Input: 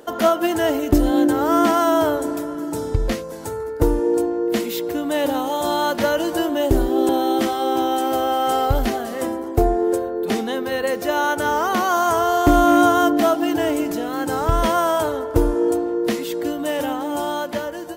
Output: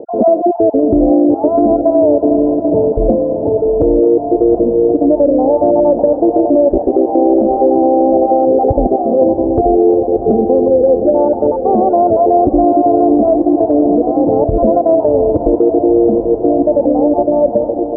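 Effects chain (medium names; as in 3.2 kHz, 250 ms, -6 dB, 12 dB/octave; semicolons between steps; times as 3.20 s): random holes in the spectrogram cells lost 24%; steep low-pass 690 Hz 48 dB/octave; tilt EQ +3 dB/octave; compression 3:1, threshold -27 dBFS, peak gain reduction 8.5 dB; on a send: echo that smears into a reverb 755 ms, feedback 69%, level -11.5 dB; on the sum: loudness maximiser +21.5 dB; trim -1 dB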